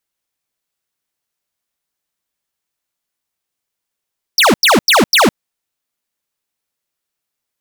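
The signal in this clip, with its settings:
repeated falling chirps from 6,000 Hz, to 170 Hz, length 0.16 s square, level −9 dB, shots 4, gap 0.09 s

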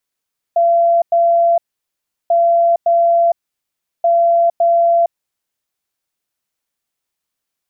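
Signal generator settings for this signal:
beeps in groups sine 681 Hz, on 0.46 s, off 0.10 s, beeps 2, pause 0.72 s, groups 3, −9 dBFS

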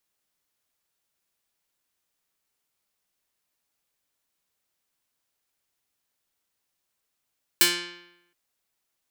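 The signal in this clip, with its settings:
Karplus-Strong string F3, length 0.72 s, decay 0.88 s, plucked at 0.27, medium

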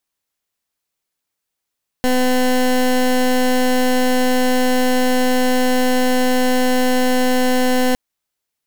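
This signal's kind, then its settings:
pulse wave 253 Hz, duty 21% −15 dBFS 5.91 s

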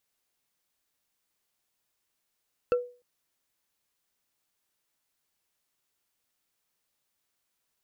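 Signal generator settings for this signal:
struck wood bar, length 0.30 s, lowest mode 490 Hz, decay 0.36 s, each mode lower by 8.5 dB, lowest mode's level −18 dB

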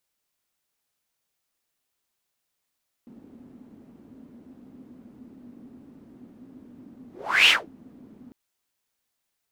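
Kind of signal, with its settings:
pass-by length 5.25 s, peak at 0:04.42, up 0.42 s, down 0.20 s, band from 250 Hz, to 2,900 Hz, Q 6.6, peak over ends 32.5 dB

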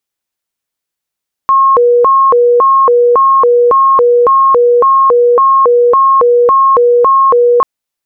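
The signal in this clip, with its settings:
siren hi-lo 482–1,080 Hz 1.8 per second sine −4 dBFS 6.14 s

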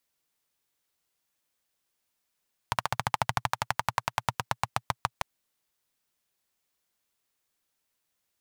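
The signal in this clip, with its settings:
pulse-train model of a single-cylinder engine, changing speed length 2.50 s, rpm 1,800, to 700, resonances 120/900 Hz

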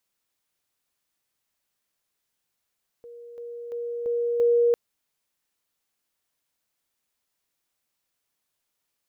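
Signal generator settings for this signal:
level staircase 474 Hz −40.5 dBFS, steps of 6 dB, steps 5, 0.34 s 0.00 s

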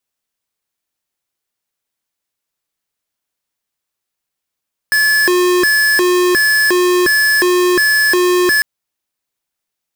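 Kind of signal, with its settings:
siren hi-lo 359–1,720 Hz 1.4 per second square −12 dBFS 3.70 s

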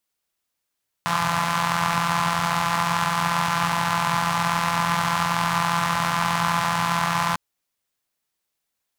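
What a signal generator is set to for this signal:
pulse-train model of a four-cylinder engine, steady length 6.30 s, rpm 5,100, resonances 150/1,000 Hz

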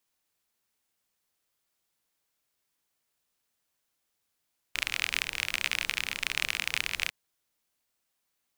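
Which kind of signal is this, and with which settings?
rain-like ticks over hiss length 2.35 s, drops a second 39, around 2,400 Hz, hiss −16 dB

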